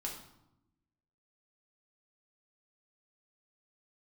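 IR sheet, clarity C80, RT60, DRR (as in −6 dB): 9.0 dB, 0.85 s, −1.5 dB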